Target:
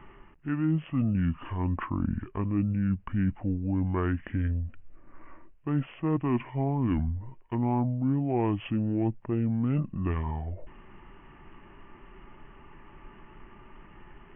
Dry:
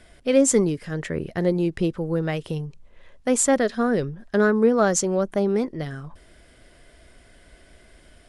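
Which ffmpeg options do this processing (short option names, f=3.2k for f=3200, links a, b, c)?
-af "areverse,acompressor=threshold=-27dB:ratio=6,areverse,aresample=11025,aresample=44100,asetrate=25442,aresample=44100,volume=2.5dB"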